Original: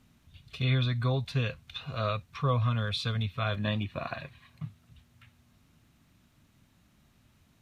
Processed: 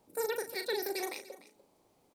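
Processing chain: wide varispeed 3.55×; doubling 38 ms -8 dB; on a send: delay 295 ms -17.5 dB; on the sum: trim -6 dB

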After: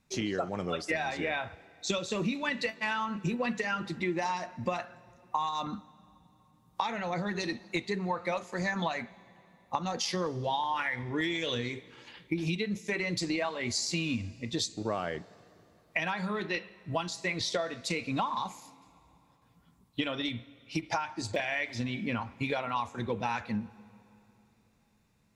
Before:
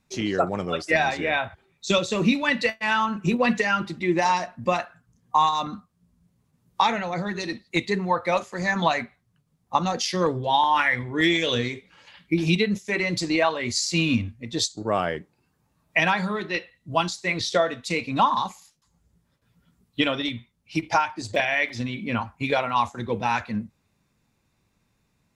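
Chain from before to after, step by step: compression, threshold -27 dBFS, peak gain reduction 12 dB; on a send: reverberation RT60 3.3 s, pre-delay 105 ms, DRR 21.5 dB; on the sum: trim -1.5 dB

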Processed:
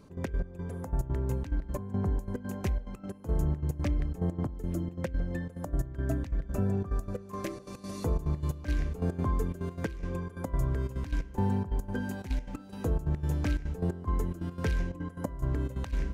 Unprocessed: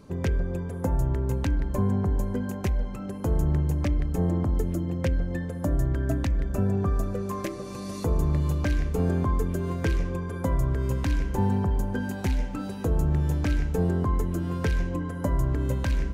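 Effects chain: trance gate "x.x.x..xxx.x.xxx" 178 bpm -12 dB; trim -4 dB

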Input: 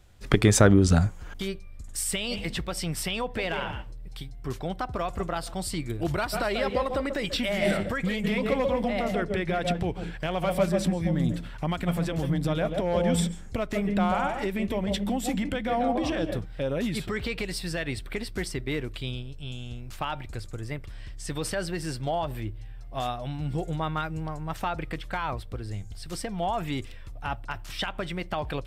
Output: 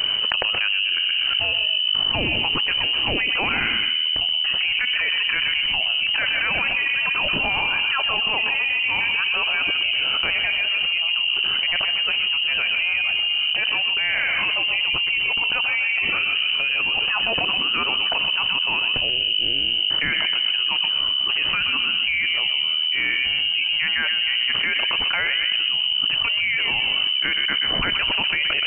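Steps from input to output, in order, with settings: on a send: tape echo 125 ms, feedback 56%, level -7 dB, low-pass 1.2 kHz; on the sum: frequency inversion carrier 3 kHz; level flattener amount 100%; trim -8 dB

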